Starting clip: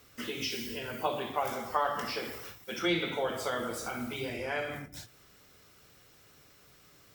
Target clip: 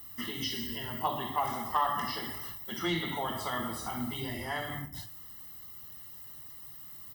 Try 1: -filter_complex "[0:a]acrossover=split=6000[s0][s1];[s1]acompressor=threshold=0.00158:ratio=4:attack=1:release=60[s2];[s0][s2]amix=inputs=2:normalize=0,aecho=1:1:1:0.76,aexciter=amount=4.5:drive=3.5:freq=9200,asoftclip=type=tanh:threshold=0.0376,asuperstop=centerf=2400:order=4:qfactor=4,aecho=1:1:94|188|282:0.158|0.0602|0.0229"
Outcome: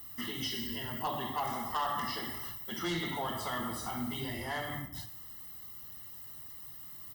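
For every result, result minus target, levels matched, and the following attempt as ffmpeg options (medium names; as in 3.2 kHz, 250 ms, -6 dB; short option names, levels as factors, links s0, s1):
echo 38 ms late; saturation: distortion +10 dB
-filter_complex "[0:a]acrossover=split=6000[s0][s1];[s1]acompressor=threshold=0.00158:ratio=4:attack=1:release=60[s2];[s0][s2]amix=inputs=2:normalize=0,aecho=1:1:1:0.76,aexciter=amount=4.5:drive=3.5:freq=9200,asoftclip=type=tanh:threshold=0.0376,asuperstop=centerf=2400:order=4:qfactor=4,aecho=1:1:56|112|168:0.158|0.0602|0.0229"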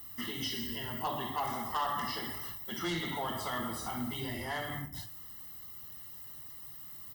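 saturation: distortion +10 dB
-filter_complex "[0:a]acrossover=split=6000[s0][s1];[s1]acompressor=threshold=0.00158:ratio=4:attack=1:release=60[s2];[s0][s2]amix=inputs=2:normalize=0,aecho=1:1:1:0.76,aexciter=amount=4.5:drive=3.5:freq=9200,asoftclip=type=tanh:threshold=0.112,asuperstop=centerf=2400:order=4:qfactor=4,aecho=1:1:56|112|168:0.158|0.0602|0.0229"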